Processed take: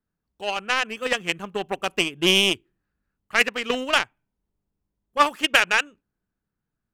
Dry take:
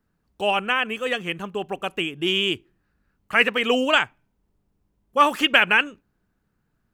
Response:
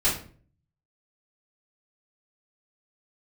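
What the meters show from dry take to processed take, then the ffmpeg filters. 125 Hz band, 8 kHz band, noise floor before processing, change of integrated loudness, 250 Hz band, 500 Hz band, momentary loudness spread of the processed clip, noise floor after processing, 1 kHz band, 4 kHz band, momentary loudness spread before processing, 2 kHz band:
+0.5 dB, +10.0 dB, -72 dBFS, -0.5 dB, -2.0 dB, -2.0 dB, 12 LU, -83 dBFS, -2.0 dB, +1.0 dB, 13 LU, -1.5 dB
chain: -af "dynaudnorm=f=130:g=13:m=3.16,aeval=exprs='0.944*(cos(1*acos(clip(val(0)/0.944,-1,1)))-cos(1*PI/2))+0.0944*(cos(7*acos(clip(val(0)/0.944,-1,1)))-cos(7*PI/2))':c=same,volume=0.891"

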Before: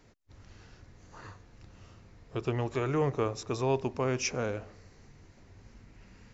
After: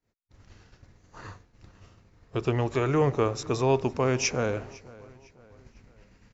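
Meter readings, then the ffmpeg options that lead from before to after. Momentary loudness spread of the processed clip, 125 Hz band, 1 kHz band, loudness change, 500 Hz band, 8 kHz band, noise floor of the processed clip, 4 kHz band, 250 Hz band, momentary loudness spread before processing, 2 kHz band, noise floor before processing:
13 LU, +5.0 dB, +5.0 dB, +5.0 dB, +5.0 dB, no reading, -66 dBFS, +5.0 dB, +5.0 dB, 20 LU, +5.0 dB, -59 dBFS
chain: -filter_complex "[0:a]agate=range=0.0224:threshold=0.00501:ratio=3:detection=peak,asplit=2[s0][s1];[s1]adelay=505,lowpass=f=4800:p=1,volume=0.0891,asplit=2[s2][s3];[s3]adelay=505,lowpass=f=4800:p=1,volume=0.46,asplit=2[s4][s5];[s5]adelay=505,lowpass=f=4800:p=1,volume=0.46[s6];[s0][s2][s4][s6]amix=inputs=4:normalize=0,volume=1.78"

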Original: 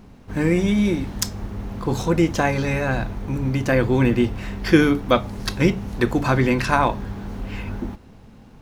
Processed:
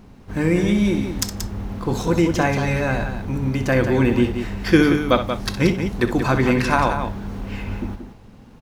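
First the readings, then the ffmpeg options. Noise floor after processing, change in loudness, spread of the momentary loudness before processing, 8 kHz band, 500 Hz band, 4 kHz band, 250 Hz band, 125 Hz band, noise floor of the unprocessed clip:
-45 dBFS, +1.0 dB, 13 LU, +1.0 dB, +1.0 dB, +1.0 dB, +1.0 dB, +0.5 dB, -46 dBFS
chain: -af "aecho=1:1:64.14|180.8:0.282|0.398"

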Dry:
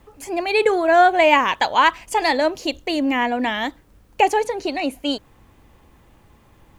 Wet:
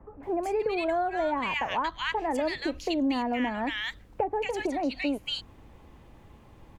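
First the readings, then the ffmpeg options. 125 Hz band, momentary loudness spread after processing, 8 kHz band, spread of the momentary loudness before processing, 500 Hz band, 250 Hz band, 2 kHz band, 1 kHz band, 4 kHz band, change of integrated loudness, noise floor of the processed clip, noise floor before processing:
no reading, 5 LU, -12.5 dB, 12 LU, -10.0 dB, -5.5 dB, -11.5 dB, -12.0 dB, -9.0 dB, -10.5 dB, -54 dBFS, -54 dBFS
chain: -filter_complex "[0:a]aemphasis=mode=reproduction:type=cd,acrossover=split=1500[s0][s1];[s1]adelay=230[s2];[s0][s2]amix=inputs=2:normalize=0,acrossover=split=190[s3][s4];[s4]acompressor=threshold=0.0447:ratio=6[s5];[s3][s5]amix=inputs=2:normalize=0"

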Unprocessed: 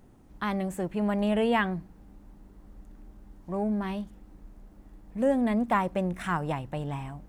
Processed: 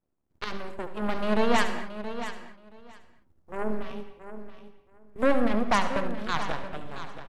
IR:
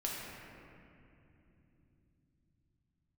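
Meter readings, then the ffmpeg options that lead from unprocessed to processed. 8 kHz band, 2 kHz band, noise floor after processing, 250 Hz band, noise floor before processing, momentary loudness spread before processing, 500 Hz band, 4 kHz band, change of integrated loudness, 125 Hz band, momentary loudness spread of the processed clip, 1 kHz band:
no reading, +3.0 dB, -68 dBFS, -2.5 dB, -55 dBFS, 11 LU, +0.5 dB, +6.0 dB, -0.5 dB, -7.0 dB, 19 LU, +1.5 dB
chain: -filter_complex "[0:a]acrossover=split=3500[s0][s1];[s1]acompressor=threshold=0.00112:ratio=4:attack=1:release=60[s2];[s0][s2]amix=inputs=2:normalize=0,aeval=exprs='0.211*(cos(1*acos(clip(val(0)/0.211,-1,1)))-cos(1*PI/2))+0.0422*(cos(6*acos(clip(val(0)/0.211,-1,1)))-cos(6*PI/2))+0.0299*(cos(7*acos(clip(val(0)/0.211,-1,1)))-cos(7*PI/2))':c=same,aecho=1:1:675|1350:0.266|0.0426,asplit=2[s3][s4];[1:a]atrim=start_sample=2205,afade=t=out:st=0.24:d=0.01,atrim=end_sample=11025,adelay=71[s5];[s4][s5]afir=irnorm=-1:irlink=0,volume=0.335[s6];[s3][s6]amix=inputs=2:normalize=0"

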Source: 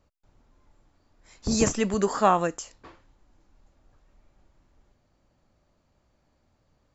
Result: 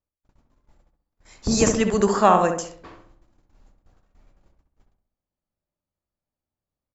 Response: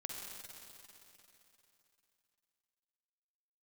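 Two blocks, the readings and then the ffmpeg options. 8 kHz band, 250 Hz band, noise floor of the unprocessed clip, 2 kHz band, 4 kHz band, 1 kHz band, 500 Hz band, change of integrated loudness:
no reading, +4.5 dB, -70 dBFS, +4.5 dB, +4.0 dB, +5.0 dB, +5.5 dB, +5.0 dB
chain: -filter_complex "[0:a]agate=range=0.0447:threshold=0.00126:ratio=16:detection=peak,asplit=2[s0][s1];[s1]adelay=66,lowpass=f=1600:p=1,volume=0.562,asplit=2[s2][s3];[s3]adelay=66,lowpass=f=1600:p=1,volume=0.5,asplit=2[s4][s5];[s5]adelay=66,lowpass=f=1600:p=1,volume=0.5,asplit=2[s6][s7];[s7]adelay=66,lowpass=f=1600:p=1,volume=0.5,asplit=2[s8][s9];[s9]adelay=66,lowpass=f=1600:p=1,volume=0.5,asplit=2[s10][s11];[s11]adelay=66,lowpass=f=1600:p=1,volume=0.5[s12];[s2][s4][s6][s8][s10][s12]amix=inputs=6:normalize=0[s13];[s0][s13]amix=inputs=2:normalize=0,volume=1.58"

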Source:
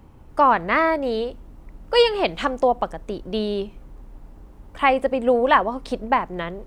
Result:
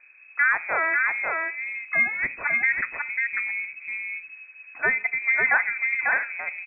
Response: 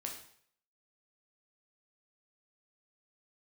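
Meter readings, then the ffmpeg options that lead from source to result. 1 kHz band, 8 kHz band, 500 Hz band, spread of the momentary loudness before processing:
-11.5 dB, no reading, -18.0 dB, 12 LU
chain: -filter_complex "[0:a]aecho=1:1:545:0.668,asplit=2[s0][s1];[1:a]atrim=start_sample=2205[s2];[s1][s2]afir=irnorm=-1:irlink=0,volume=0.251[s3];[s0][s3]amix=inputs=2:normalize=0,lowpass=f=2200:t=q:w=0.5098,lowpass=f=2200:t=q:w=0.6013,lowpass=f=2200:t=q:w=0.9,lowpass=f=2200:t=q:w=2.563,afreqshift=-2600,volume=0.473"

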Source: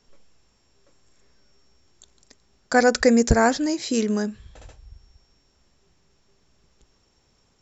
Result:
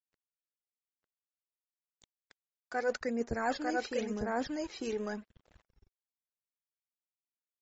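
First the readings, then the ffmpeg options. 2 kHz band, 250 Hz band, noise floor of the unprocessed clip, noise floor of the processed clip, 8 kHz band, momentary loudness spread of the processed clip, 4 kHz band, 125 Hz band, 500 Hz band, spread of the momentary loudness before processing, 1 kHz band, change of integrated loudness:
-12.5 dB, -14.5 dB, -65 dBFS, under -85 dBFS, no reading, 5 LU, -13.5 dB, -18.0 dB, -12.5 dB, 8 LU, -11.0 dB, -15.0 dB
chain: -filter_complex "[0:a]acrossover=split=140[s0][s1];[s0]acompressor=threshold=0.126:ratio=6[s2];[s2][s1]amix=inputs=2:normalize=0,aeval=exprs='val(0)+0.00112*(sin(2*PI*50*n/s)+sin(2*PI*2*50*n/s)/2+sin(2*PI*3*50*n/s)/3+sin(2*PI*4*50*n/s)/4+sin(2*PI*5*50*n/s)/5)':c=same,aresample=16000,aeval=exprs='sgn(val(0))*max(abs(val(0))-0.00794,0)':c=same,aresample=44100,aecho=1:1:900:0.398,aphaser=in_gain=1:out_gain=1:delay=2.7:decay=0.45:speed=0.93:type=sinusoidal,areverse,acompressor=threshold=0.0398:ratio=8,areverse,bass=f=250:g=-7,treble=f=4000:g=-10" -ar 44100 -c:a libmp3lame -b:a 32k

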